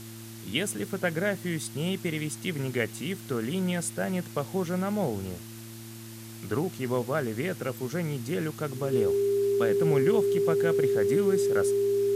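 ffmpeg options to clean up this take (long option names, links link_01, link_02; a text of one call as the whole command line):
ffmpeg -i in.wav -af "adeclick=threshold=4,bandreject=frequency=112.6:width_type=h:width=4,bandreject=frequency=225.2:width_type=h:width=4,bandreject=frequency=337.8:width_type=h:width=4,bandreject=frequency=400:width=30,afftdn=noise_reduction=30:noise_floor=-43" out.wav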